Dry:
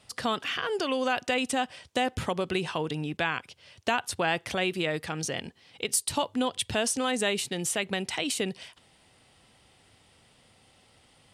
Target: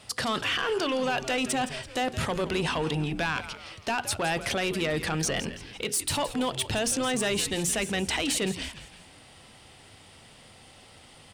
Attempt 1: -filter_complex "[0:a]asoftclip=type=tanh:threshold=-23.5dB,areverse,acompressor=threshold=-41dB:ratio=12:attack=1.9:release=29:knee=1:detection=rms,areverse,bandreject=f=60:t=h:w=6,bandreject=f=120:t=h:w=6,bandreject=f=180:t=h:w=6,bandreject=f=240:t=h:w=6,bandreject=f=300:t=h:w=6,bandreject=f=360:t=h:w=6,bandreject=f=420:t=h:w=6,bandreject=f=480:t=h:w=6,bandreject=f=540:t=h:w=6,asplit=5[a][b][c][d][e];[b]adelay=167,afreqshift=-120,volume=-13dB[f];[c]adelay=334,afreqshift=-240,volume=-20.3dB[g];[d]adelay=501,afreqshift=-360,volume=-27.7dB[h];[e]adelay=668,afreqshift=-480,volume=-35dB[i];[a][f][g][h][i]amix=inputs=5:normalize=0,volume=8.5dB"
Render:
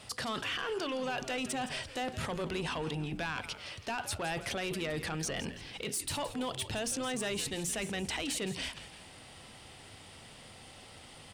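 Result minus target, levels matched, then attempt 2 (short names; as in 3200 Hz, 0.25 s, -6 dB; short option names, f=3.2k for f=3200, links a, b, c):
compressor: peak gain reduction +8 dB
-filter_complex "[0:a]asoftclip=type=tanh:threshold=-23.5dB,areverse,acompressor=threshold=-32.5dB:ratio=12:attack=1.9:release=29:knee=1:detection=rms,areverse,bandreject=f=60:t=h:w=6,bandreject=f=120:t=h:w=6,bandreject=f=180:t=h:w=6,bandreject=f=240:t=h:w=6,bandreject=f=300:t=h:w=6,bandreject=f=360:t=h:w=6,bandreject=f=420:t=h:w=6,bandreject=f=480:t=h:w=6,bandreject=f=540:t=h:w=6,asplit=5[a][b][c][d][e];[b]adelay=167,afreqshift=-120,volume=-13dB[f];[c]adelay=334,afreqshift=-240,volume=-20.3dB[g];[d]adelay=501,afreqshift=-360,volume=-27.7dB[h];[e]adelay=668,afreqshift=-480,volume=-35dB[i];[a][f][g][h][i]amix=inputs=5:normalize=0,volume=8.5dB"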